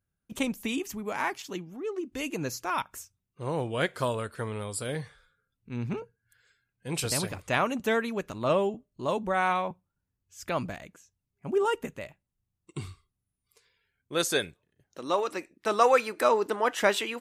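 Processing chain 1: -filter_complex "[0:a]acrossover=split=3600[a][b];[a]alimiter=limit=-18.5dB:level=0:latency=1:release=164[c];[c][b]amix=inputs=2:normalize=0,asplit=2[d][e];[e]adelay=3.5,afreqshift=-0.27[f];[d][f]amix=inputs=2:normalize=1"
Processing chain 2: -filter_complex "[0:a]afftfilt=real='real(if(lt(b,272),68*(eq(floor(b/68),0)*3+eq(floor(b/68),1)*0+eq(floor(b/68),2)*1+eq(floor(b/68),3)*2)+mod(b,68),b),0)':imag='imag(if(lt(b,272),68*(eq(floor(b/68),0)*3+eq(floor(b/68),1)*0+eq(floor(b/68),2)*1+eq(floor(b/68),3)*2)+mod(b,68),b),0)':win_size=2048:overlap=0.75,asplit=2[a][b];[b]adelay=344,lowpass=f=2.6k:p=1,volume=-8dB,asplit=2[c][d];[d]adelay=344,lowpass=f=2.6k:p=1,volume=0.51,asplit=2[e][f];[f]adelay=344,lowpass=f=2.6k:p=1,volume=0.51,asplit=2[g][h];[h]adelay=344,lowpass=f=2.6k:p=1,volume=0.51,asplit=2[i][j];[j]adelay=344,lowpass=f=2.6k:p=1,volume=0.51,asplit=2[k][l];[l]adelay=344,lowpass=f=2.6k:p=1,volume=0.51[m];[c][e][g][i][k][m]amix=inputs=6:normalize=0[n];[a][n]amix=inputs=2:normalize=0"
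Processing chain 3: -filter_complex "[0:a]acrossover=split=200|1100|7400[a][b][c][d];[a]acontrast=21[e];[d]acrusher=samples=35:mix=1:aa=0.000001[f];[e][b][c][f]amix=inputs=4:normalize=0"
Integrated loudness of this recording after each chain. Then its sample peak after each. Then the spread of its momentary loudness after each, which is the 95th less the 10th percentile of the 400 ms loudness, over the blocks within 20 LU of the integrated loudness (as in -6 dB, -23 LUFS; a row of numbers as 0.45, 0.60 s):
-35.0, -27.0, -29.5 LUFS; -18.0, -6.5, -8.0 dBFS; 15, 19, 14 LU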